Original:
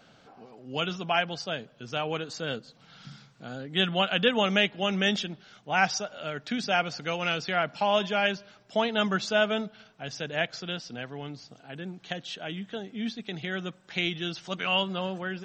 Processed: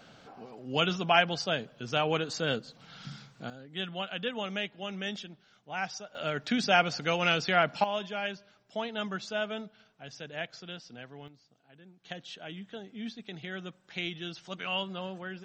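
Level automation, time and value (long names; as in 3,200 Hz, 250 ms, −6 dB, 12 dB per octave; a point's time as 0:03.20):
+2.5 dB
from 0:03.50 −10.5 dB
from 0:06.15 +2 dB
from 0:07.84 −8.5 dB
from 0:11.28 −17 dB
from 0:12.05 −6.5 dB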